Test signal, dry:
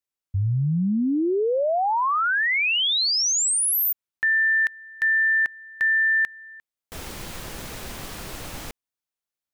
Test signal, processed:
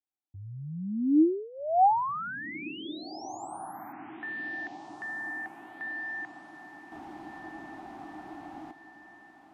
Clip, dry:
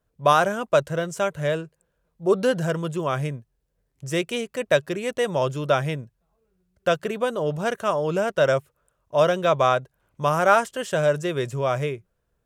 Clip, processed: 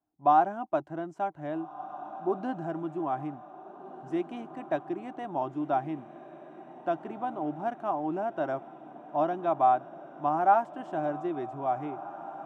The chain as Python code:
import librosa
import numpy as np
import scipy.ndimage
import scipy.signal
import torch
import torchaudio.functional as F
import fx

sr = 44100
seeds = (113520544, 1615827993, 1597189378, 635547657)

y = fx.double_bandpass(x, sr, hz=490.0, octaves=1.3)
y = fx.echo_diffused(y, sr, ms=1683, feedback_pct=59, wet_db=-15)
y = y * 10.0 ** (4.0 / 20.0)